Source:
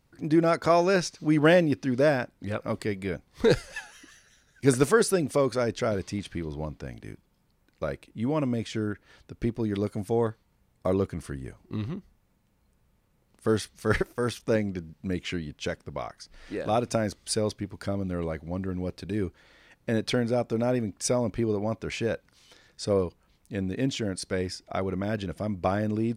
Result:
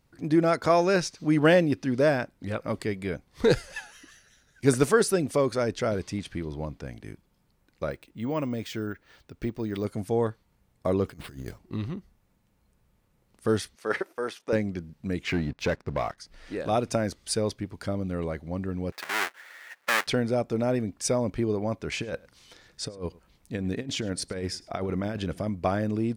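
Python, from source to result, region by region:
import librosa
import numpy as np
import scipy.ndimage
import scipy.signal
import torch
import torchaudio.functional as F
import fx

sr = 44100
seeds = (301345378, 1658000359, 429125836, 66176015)

y = fx.chain(x, sr, fx.resample_bad(factor=2, down='filtered', up='hold'),
    fx.low_shelf(hz=430.0, db=-4.0), at=(7.91, 9.85))
y = fx.chain(y, sr, fx.over_compress(threshold_db=-39.0, ratio=-0.5),
    fx.sample_hold(seeds[0], rate_hz=6500.0, jitter_pct=0), at=(11.06, 11.59))
y = fx.chain(y, sr, fx.highpass(hz=400.0, slope=12),
    fx.high_shelf(hz=3900.0, db=-10.0), at=(13.75, 14.53))
y = fx.chain(y, sr, fx.lowpass(hz=4300.0, slope=12),
    fx.peak_eq(hz=3100.0, db=-12.5, octaves=0.21),
    fx.leveller(passes=2), at=(15.27, 16.18))
y = fx.chain(y, sr, fx.halfwave_hold(),
    fx.highpass(hz=750.0, slope=12),
    fx.peak_eq(hz=1800.0, db=10.5, octaves=1.1), at=(18.92, 20.07))
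y = fx.chain(y, sr, fx.over_compress(threshold_db=-30.0, ratio=-0.5),
    fx.echo_single(ms=103, db=-23.0), at=(21.92, 25.49))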